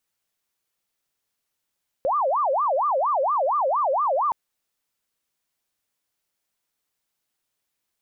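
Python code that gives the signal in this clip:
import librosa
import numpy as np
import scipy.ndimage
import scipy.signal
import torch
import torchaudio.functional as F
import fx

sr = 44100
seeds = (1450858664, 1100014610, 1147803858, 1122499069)

y = fx.siren(sr, length_s=2.27, kind='wail', low_hz=522.0, high_hz=1210.0, per_s=4.3, wave='sine', level_db=-19.0)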